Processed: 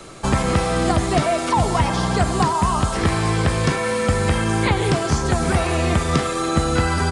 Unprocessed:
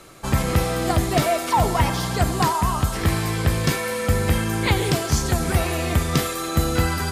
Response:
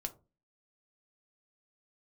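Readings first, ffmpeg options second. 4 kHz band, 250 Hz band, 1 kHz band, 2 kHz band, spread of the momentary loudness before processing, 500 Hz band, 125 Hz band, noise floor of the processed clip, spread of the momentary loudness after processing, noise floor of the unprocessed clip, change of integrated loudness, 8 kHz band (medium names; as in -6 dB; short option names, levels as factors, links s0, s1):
+0.5 dB, +3.0 dB, +3.0 dB, +2.0 dB, 2 LU, +3.0 dB, +1.0 dB, -24 dBFS, 2 LU, -28 dBFS, +2.0 dB, 0.0 dB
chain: -filter_complex "[0:a]asplit=2[s0][s1];[1:a]atrim=start_sample=2205,lowpass=f=2100:w=0.5412,lowpass=f=2100:w=1.3066[s2];[s1][s2]afir=irnorm=-1:irlink=0,volume=0.282[s3];[s0][s3]amix=inputs=2:normalize=0,aresample=22050,aresample=44100,acrossover=split=360|810|2100[s4][s5][s6][s7];[s4]acompressor=threshold=0.0631:ratio=4[s8];[s5]acompressor=threshold=0.0224:ratio=4[s9];[s6]acompressor=threshold=0.0398:ratio=4[s10];[s7]acompressor=threshold=0.0141:ratio=4[s11];[s8][s9][s10][s11]amix=inputs=4:normalize=0,volume=2"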